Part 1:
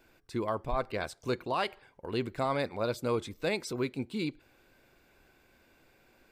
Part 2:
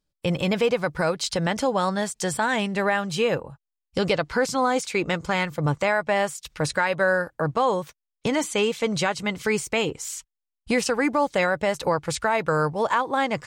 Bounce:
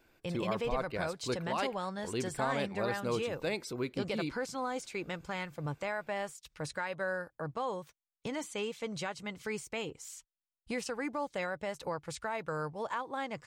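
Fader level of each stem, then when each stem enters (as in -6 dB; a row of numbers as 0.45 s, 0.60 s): -3.5 dB, -14.0 dB; 0.00 s, 0.00 s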